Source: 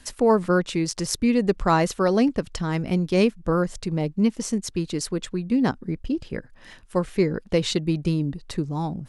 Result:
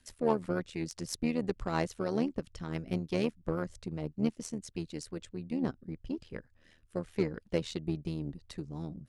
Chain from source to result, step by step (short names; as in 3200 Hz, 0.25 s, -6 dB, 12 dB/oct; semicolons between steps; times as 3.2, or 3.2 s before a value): rotary speaker horn 6 Hz, later 0.9 Hz, at 4.82; in parallel at -11.5 dB: one-sided clip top -28 dBFS; on the sum: added harmonics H 7 -27 dB, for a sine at -6.5 dBFS; AM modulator 79 Hz, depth 55%; gain -7.5 dB